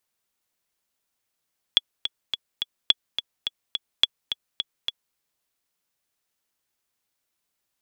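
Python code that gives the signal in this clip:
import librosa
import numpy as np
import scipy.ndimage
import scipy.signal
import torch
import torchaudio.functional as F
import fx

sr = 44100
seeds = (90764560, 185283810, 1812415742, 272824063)

y = fx.click_track(sr, bpm=212, beats=4, bars=3, hz=3380.0, accent_db=10.0, level_db=-2.5)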